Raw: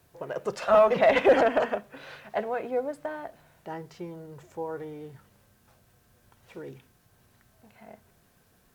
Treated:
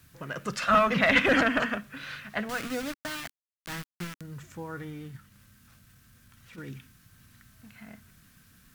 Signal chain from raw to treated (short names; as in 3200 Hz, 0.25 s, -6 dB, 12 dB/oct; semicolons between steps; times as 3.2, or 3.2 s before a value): 2.49–4.21 sample gate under -36 dBFS; 4.9–6.58 transient shaper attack -8 dB, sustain -3 dB; band shelf 580 Hz -14.5 dB; gain +6.5 dB